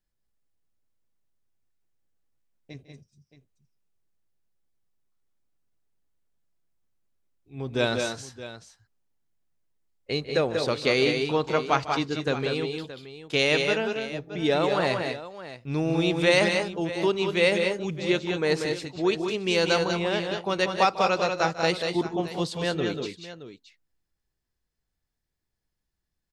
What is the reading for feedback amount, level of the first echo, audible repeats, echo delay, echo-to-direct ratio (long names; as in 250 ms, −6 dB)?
repeats not evenly spaced, −16.5 dB, 3, 149 ms, −4.0 dB